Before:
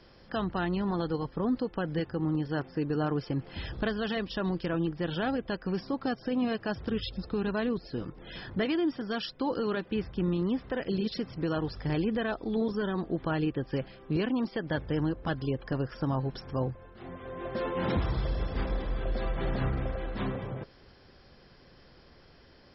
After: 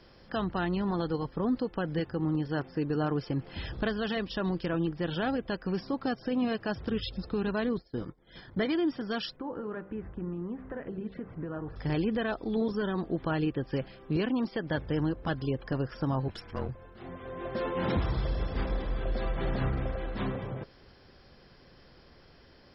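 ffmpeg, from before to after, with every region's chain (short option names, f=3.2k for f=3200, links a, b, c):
-filter_complex "[0:a]asettb=1/sr,asplit=3[a][b][c];[a]atrim=end=7.644[d];[b]atrim=start=7.64:end=8.73,asetpts=PTS-STARTPTS,afade=t=in:d=0.004:c=qsin,afade=t=out:st=1.086:d=0.004:c=qsin,agate=range=-33dB:threshold=-37dB:ratio=3:release=100:detection=peak,asuperstop=centerf=2700:order=8:qfactor=5.4[e];[c]atrim=start=8.726[f];[d][e]acrossfade=d=0.004:c1=hsin:c2=qsin[g];[g][f]acrossfade=d=0.004:c1=qsin:c2=hsin,asettb=1/sr,asplit=3[h][i][j];[h]atrim=end=9.364[k];[i]atrim=start=9.36:end=11.76,asetpts=PTS-STARTPTS,afade=t=in:d=0.004:c=qsin,afade=t=out:st=2.396:d=0.004:c=qsin,acompressor=threshold=-33dB:ratio=4:attack=3.2:release=140:knee=1:detection=peak,lowpass=f=1.9k:w=0.5412,lowpass=f=1.9k:w=1.3066,bandreject=f=64.88:t=h:w=4,bandreject=f=129.76:t=h:w=4,bandreject=f=194.64:t=h:w=4,bandreject=f=259.52:t=h:w=4,bandreject=f=324.4:t=h:w=4,bandreject=f=389.28:t=h:w=4,bandreject=f=454.16:t=h:w=4,bandreject=f=519.04:t=h:w=4,bandreject=f=583.92:t=h:w=4,bandreject=f=648.8:t=h:w=4,bandreject=f=713.68:t=h:w=4,bandreject=f=778.56:t=h:w=4,bandreject=f=843.44:t=h:w=4,bandreject=f=908.32:t=h:w=4,bandreject=f=973.2:t=h:w=4,bandreject=f=1.03808k:t=h:w=4,bandreject=f=1.10296k:t=h:w=4,bandreject=f=1.16784k:t=h:w=4,bandreject=f=1.23272k:t=h:w=4,bandreject=f=1.2976k:t=h:w=4,bandreject=f=1.36248k:t=h:w=4,bandreject=f=1.42736k:t=h:w=4,bandreject=f=1.49224k:t=h:w=4[l];[j]atrim=start=11.756[m];[k][l]acrossfade=d=0.004:c1=hsin:c2=qsin[n];[n][m]acrossfade=d=0.004:c1=qsin:c2=hsin,asettb=1/sr,asplit=3[o][p][q];[o]atrim=end=16.284[r];[p]atrim=start=16.28:end=16.69,asetpts=PTS-STARTPTS,afade=t=in:d=0.004:c=qsin,afade=t=out:st=0.406:d=0.004:c=qsin,equalizer=f=2.4k:t=o:w=1.6:g=9,afreqshift=-44,aeval=exprs='(tanh(20*val(0)+0.75)-tanh(0.75))/20':c=same[s];[q]atrim=start=16.686[t];[r][s]acrossfade=d=0.004:c1=hsin:c2=qsin[u];[u][t]acrossfade=d=0.004:c1=qsin:c2=hsin"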